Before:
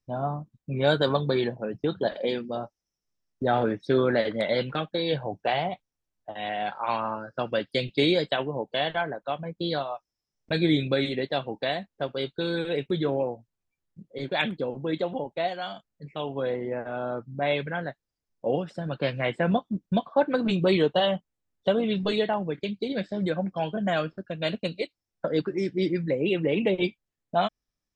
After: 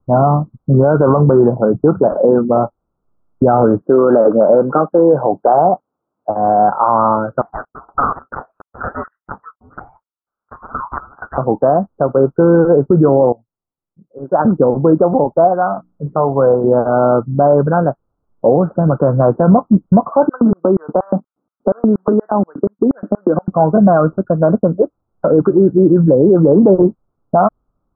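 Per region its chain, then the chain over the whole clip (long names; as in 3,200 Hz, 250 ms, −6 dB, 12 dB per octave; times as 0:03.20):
0:03.82–0:06.30: high-pass filter 270 Hz + low-shelf EQ 480 Hz +3 dB
0:07.41–0:11.38: auto-filter low-pass square 2.1 Hz 720–1,700 Hz + hard clipping −16.5 dBFS + voice inversion scrambler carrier 3,500 Hz
0:13.32–0:14.45: Savitzky-Golay smoothing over 25 samples + low-shelf EQ 95 Hz −10 dB + expander for the loud parts 2.5 to 1, over −36 dBFS
0:15.67–0:16.64: dynamic equaliser 290 Hz, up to −5 dB, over −43 dBFS, Q 1.1 + mains-hum notches 60/120/180/240/300/360 Hz
0:20.29–0:23.48: auto-filter high-pass square 4.2 Hz 240–2,900 Hz + downward compressor, threshold −28 dBFS
whole clip: Butterworth low-pass 1,400 Hz 96 dB per octave; boost into a limiter +21 dB; level −1 dB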